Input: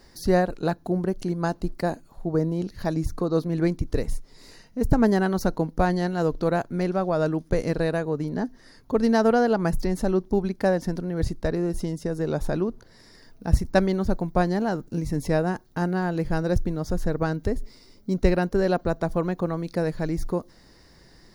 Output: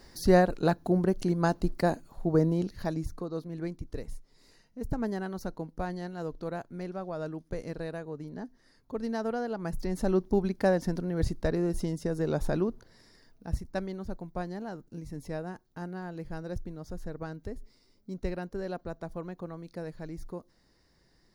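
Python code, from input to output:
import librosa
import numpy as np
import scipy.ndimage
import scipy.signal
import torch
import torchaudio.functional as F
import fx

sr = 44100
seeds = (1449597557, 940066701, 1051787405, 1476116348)

y = fx.gain(x, sr, db=fx.line((2.52, -0.5), (3.36, -12.5), (9.56, -12.5), (10.12, -3.0), (12.66, -3.0), (13.69, -13.5)))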